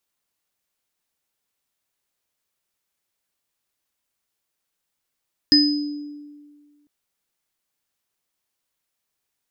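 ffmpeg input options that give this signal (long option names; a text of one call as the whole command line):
ffmpeg -f lavfi -i "aevalsrc='0.211*pow(10,-3*t/1.77)*sin(2*PI*293*t)+0.0398*pow(10,-3*t/0.32)*sin(2*PI*1800*t)+0.316*pow(10,-3*t/0.69)*sin(2*PI*5020*t)':duration=1.35:sample_rate=44100" out.wav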